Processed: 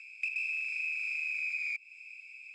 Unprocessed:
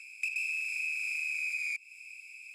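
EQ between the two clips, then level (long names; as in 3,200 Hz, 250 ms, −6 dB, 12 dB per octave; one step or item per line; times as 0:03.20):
low-pass filter 4,100 Hz 12 dB per octave
0.0 dB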